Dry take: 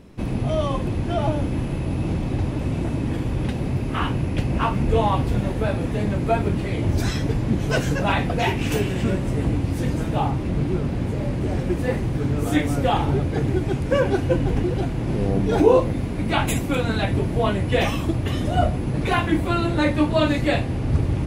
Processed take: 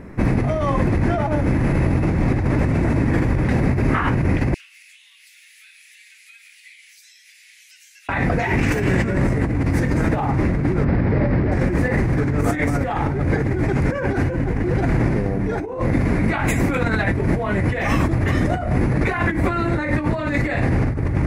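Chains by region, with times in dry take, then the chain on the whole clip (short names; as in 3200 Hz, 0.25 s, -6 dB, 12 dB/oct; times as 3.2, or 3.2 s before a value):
4.54–8.09 steep high-pass 2800 Hz + compressor 10:1, threshold -45 dBFS
10.84–11.52 steep low-pass 5500 Hz 72 dB/oct + high shelf 3700 Hz -9 dB
whole clip: resonant high shelf 2500 Hz -8 dB, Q 3; negative-ratio compressor -25 dBFS, ratio -1; dynamic EQ 5000 Hz, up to +7 dB, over -51 dBFS, Q 0.75; gain +5.5 dB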